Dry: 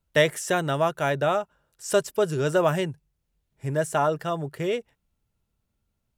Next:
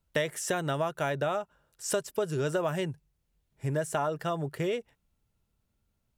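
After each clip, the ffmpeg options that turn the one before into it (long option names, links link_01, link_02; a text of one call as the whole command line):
ffmpeg -i in.wav -af "acompressor=threshold=-27dB:ratio=4" out.wav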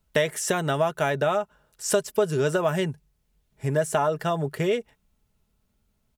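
ffmpeg -i in.wav -af "aecho=1:1:4.7:0.32,volume=5.5dB" out.wav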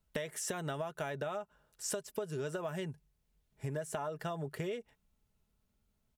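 ffmpeg -i in.wav -af "acompressor=threshold=-28dB:ratio=6,volume=-7dB" out.wav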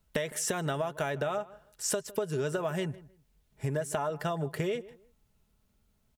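ffmpeg -i in.wav -filter_complex "[0:a]asplit=2[link_01][link_02];[link_02]adelay=157,lowpass=frequency=1800:poles=1,volume=-18.5dB,asplit=2[link_03][link_04];[link_04]adelay=157,lowpass=frequency=1800:poles=1,volume=0.23[link_05];[link_01][link_03][link_05]amix=inputs=3:normalize=0,volume=6.5dB" out.wav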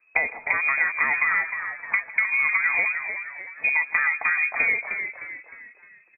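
ffmpeg -i in.wav -filter_complex "[0:a]asplit=6[link_01][link_02][link_03][link_04][link_05][link_06];[link_02]adelay=307,afreqshift=70,volume=-8dB[link_07];[link_03]adelay=614,afreqshift=140,volume=-15.1dB[link_08];[link_04]adelay=921,afreqshift=210,volume=-22.3dB[link_09];[link_05]adelay=1228,afreqshift=280,volume=-29.4dB[link_10];[link_06]adelay=1535,afreqshift=350,volume=-36.5dB[link_11];[link_01][link_07][link_08][link_09][link_10][link_11]amix=inputs=6:normalize=0,lowpass=frequency=2200:width_type=q:width=0.5098,lowpass=frequency=2200:width_type=q:width=0.6013,lowpass=frequency=2200:width_type=q:width=0.9,lowpass=frequency=2200:width_type=q:width=2.563,afreqshift=-2600,volume=8.5dB" out.wav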